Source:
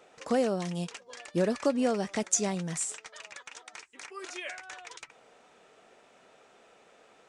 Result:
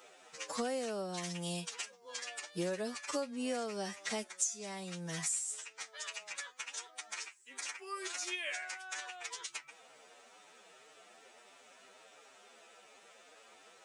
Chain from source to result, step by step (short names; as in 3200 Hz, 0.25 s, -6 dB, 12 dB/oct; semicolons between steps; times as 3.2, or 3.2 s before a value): tilt +2.5 dB/oct; compressor 5:1, threshold -34 dBFS, peak gain reduction 17.5 dB; time stretch by phase-locked vocoder 1.9×